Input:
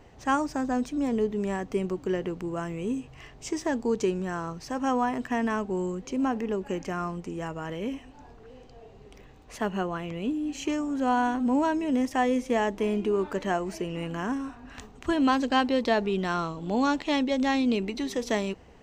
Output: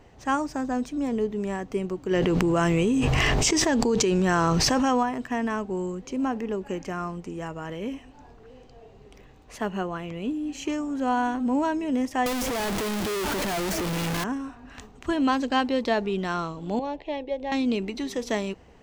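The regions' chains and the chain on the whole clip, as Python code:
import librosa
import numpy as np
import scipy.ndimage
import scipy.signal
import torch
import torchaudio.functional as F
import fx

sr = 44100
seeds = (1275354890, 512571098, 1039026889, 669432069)

y = fx.chain(x, sr, fx.dynamic_eq(hz=4000.0, q=0.76, threshold_db=-50.0, ratio=4.0, max_db=5),
    fx.env_flatten(amount_pct=100), at=(2.11, 5.03))
y = fx.chain(y, sr, fx.clip_1bit(),
    fx.band_squash(depth_pct=100), at=(12.26, 14.24))
y = fx.chain(y, sr, fx.lowpass(hz=2100.0, slope=12),
    fx.fixed_phaser(hz=550.0, stages=4), at=(16.79, 17.52))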